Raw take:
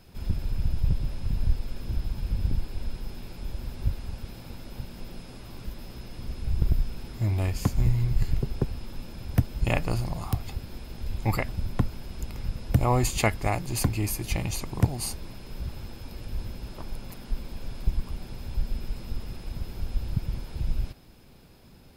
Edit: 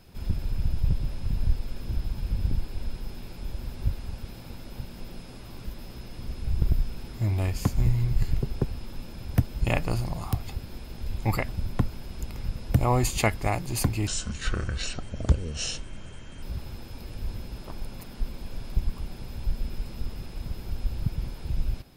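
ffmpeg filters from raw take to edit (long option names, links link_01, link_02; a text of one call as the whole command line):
ffmpeg -i in.wav -filter_complex "[0:a]asplit=3[link_01][link_02][link_03];[link_01]atrim=end=14.074[link_04];[link_02]atrim=start=14.07:end=15.53,asetpts=PTS-STARTPTS,asetrate=27342,aresample=44100,atrim=end_sample=103848,asetpts=PTS-STARTPTS[link_05];[link_03]atrim=start=15.526[link_06];[link_04][link_05]acrossfade=duration=0.004:curve1=hsin:curve2=hsin[link_07];[link_07][link_06]acrossfade=duration=0.004:curve1=hsin:curve2=hsin" out.wav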